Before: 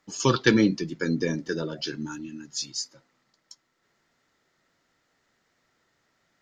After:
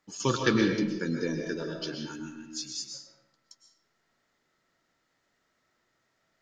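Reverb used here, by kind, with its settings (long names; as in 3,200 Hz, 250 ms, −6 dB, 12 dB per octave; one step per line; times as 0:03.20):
comb and all-pass reverb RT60 0.83 s, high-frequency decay 0.75×, pre-delay 85 ms, DRR 2.5 dB
level −5.5 dB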